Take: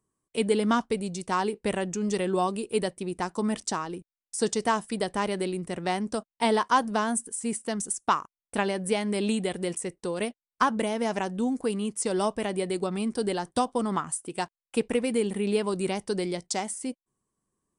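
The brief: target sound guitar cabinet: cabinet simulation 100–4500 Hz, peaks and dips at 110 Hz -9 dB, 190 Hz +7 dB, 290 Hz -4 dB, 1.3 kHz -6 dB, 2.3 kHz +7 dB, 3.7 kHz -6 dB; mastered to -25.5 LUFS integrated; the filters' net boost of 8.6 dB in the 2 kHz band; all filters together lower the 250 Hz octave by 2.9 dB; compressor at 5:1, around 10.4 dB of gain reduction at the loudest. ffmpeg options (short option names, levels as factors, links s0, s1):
-af "equalizer=f=250:t=o:g=-7.5,equalizer=f=2000:t=o:g=8.5,acompressor=threshold=0.0447:ratio=5,highpass=100,equalizer=f=110:t=q:w=4:g=-9,equalizer=f=190:t=q:w=4:g=7,equalizer=f=290:t=q:w=4:g=-4,equalizer=f=1300:t=q:w=4:g=-6,equalizer=f=2300:t=q:w=4:g=7,equalizer=f=3700:t=q:w=4:g=-6,lowpass=f=4500:w=0.5412,lowpass=f=4500:w=1.3066,volume=2.11"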